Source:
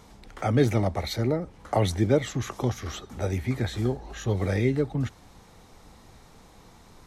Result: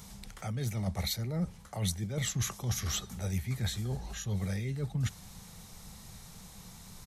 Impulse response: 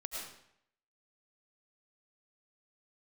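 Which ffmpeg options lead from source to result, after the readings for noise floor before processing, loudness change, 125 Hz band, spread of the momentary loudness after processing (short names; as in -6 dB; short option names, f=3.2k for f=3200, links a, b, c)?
-53 dBFS, -7.5 dB, -5.5 dB, 16 LU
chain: -af "aresample=32000,aresample=44100,areverse,acompressor=threshold=-30dB:ratio=16,areverse,lowshelf=f=230:t=q:w=3:g=6,crystalizer=i=4.5:c=0,volume=-5dB"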